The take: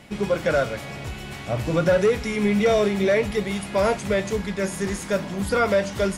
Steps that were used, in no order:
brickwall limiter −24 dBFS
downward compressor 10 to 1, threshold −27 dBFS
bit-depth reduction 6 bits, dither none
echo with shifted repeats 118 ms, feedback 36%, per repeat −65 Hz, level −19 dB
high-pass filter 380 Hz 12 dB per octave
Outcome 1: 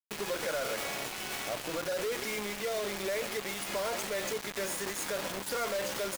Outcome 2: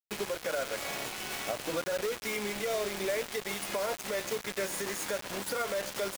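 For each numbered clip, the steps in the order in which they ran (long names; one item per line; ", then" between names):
echo with shifted repeats, then brickwall limiter, then downward compressor, then high-pass filter, then bit-depth reduction
downward compressor, then high-pass filter, then echo with shifted repeats, then bit-depth reduction, then brickwall limiter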